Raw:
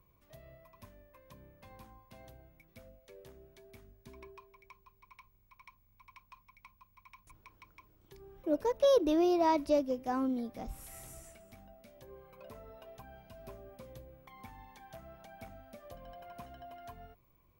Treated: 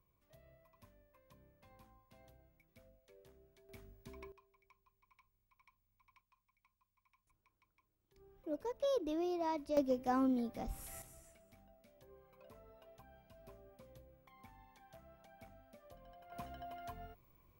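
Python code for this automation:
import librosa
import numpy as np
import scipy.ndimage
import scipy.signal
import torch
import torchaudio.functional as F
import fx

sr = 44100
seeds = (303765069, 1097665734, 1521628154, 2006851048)

y = fx.gain(x, sr, db=fx.steps((0.0, -9.5), (3.69, -0.5), (4.32, -13.0), (6.21, -19.0), (8.16, -10.0), (9.77, -0.5), (11.02, -9.0), (16.32, 0.5)))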